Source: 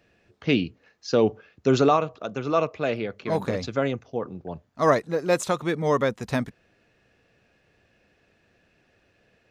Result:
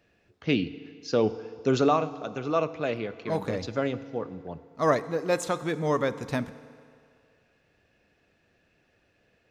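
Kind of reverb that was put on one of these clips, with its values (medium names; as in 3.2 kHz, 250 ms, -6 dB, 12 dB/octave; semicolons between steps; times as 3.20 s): FDN reverb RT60 2.3 s, low-frequency decay 0.75×, high-frequency decay 0.8×, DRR 13.5 dB; trim -3.5 dB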